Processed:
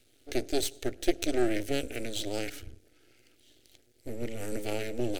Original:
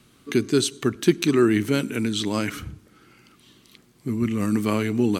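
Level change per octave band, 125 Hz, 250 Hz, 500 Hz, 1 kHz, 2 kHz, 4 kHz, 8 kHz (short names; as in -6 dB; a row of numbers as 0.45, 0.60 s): -14.0, -13.0, -8.0, -8.5, -9.0, -7.5, -6.5 dB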